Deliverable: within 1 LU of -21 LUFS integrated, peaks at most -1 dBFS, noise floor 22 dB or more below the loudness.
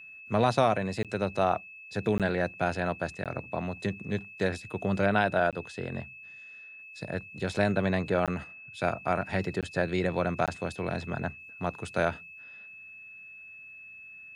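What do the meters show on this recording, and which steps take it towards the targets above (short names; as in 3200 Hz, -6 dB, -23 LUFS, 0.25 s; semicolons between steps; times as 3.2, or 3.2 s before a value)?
dropouts 7; longest dropout 17 ms; steady tone 2600 Hz; tone level -45 dBFS; loudness -30.0 LUFS; peak -11.5 dBFS; loudness target -21.0 LUFS
-> interpolate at 1.03/2.18/3.24/5.51/8.26/9.61/10.46, 17 ms; notch 2600 Hz, Q 30; gain +9 dB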